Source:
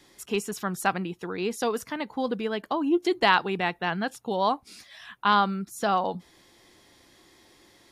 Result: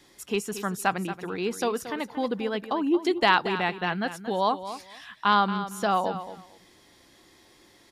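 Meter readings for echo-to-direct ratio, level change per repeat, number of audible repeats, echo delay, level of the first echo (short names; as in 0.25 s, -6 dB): -12.0 dB, -15.0 dB, 2, 0.229 s, -12.0 dB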